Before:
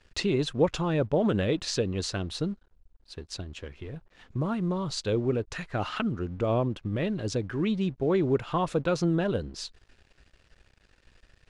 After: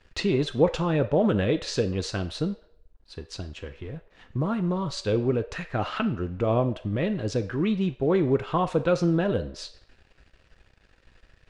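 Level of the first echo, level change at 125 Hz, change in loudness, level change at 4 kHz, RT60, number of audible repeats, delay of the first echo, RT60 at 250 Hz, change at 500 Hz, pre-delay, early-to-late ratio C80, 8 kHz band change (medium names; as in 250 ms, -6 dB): no echo, +2.5 dB, +2.5 dB, 0.0 dB, 0.65 s, no echo, no echo, 0.75 s, +3.0 dB, 3 ms, 17.5 dB, -2.5 dB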